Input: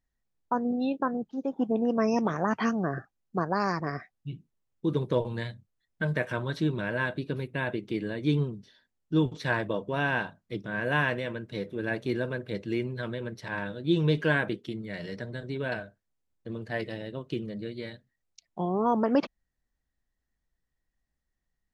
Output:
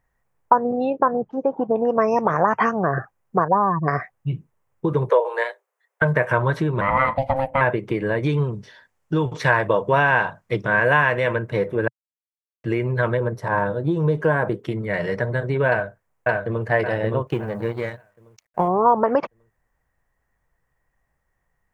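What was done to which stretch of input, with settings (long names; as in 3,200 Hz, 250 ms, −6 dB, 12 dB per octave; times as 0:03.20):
0:00.90–0:01.71: high-shelf EQ 2,500 Hz −10.5 dB
0:02.36–0:02.79: notch filter 4,100 Hz, Q 9.1
0:03.48–0:03.88: expanding power law on the bin magnitudes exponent 2.6
0:05.09–0:06.02: Butterworth high-pass 390 Hz 72 dB per octave
0:06.81–0:07.61: ring modulation 400 Hz
0:08.23–0:11.36: parametric band 4,800 Hz +7.5 dB 2.2 octaves
0:11.88–0:12.64: silence
0:13.17–0:14.63: parametric band 2,400 Hz −11.5 dB 1.3 octaves
0:15.69–0:16.65: delay throw 570 ms, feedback 35%, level −1.5 dB
0:17.27–0:18.68: mu-law and A-law mismatch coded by A
whole clip: downward compressor, threshold −29 dBFS; octave-band graphic EQ 125/250/500/1,000/2,000/4,000 Hz +7/−5/+7/+10/+6/−10 dB; level +8 dB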